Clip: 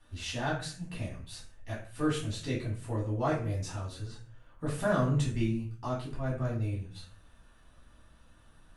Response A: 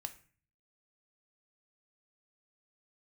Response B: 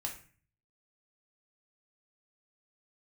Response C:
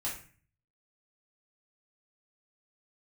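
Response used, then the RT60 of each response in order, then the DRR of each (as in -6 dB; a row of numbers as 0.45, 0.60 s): C; 0.40, 0.40, 0.40 s; 8.0, 0.5, -6.5 dB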